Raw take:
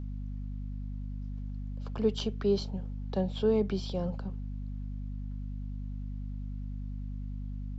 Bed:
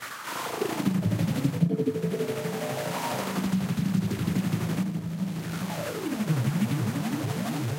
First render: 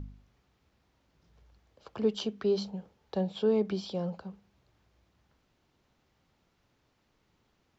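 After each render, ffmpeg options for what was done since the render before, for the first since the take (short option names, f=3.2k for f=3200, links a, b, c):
-af "bandreject=f=50:t=h:w=4,bandreject=f=100:t=h:w=4,bandreject=f=150:t=h:w=4,bandreject=f=200:t=h:w=4,bandreject=f=250:t=h:w=4"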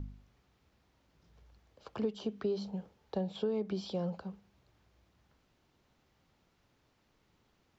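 -filter_complex "[0:a]acrossover=split=1100[a][b];[b]alimiter=level_in=13dB:limit=-24dB:level=0:latency=1:release=114,volume=-13dB[c];[a][c]amix=inputs=2:normalize=0,acompressor=threshold=-30dB:ratio=6"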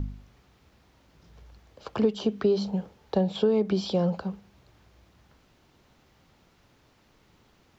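-af "volume=10.5dB"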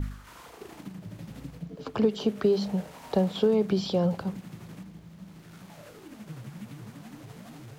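-filter_complex "[1:a]volume=-16dB[a];[0:a][a]amix=inputs=2:normalize=0"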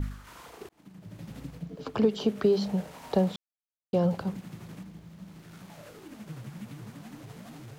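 -filter_complex "[0:a]asplit=4[a][b][c][d];[a]atrim=end=0.69,asetpts=PTS-STARTPTS,afade=t=out:st=0.686:d=0.004:c=hsin[e];[b]atrim=start=0.69:end=3.36,asetpts=PTS-STARTPTS,afade=t=in:d=0.61,afade=t=out:st=2.666:d=0.004:c=hsin[f];[c]atrim=start=3.36:end=3.93,asetpts=PTS-STARTPTS,volume=0[g];[d]atrim=start=3.93,asetpts=PTS-STARTPTS,afade=t=in:d=0.004:c=hsin[h];[e][f][g][h]concat=n=4:v=0:a=1"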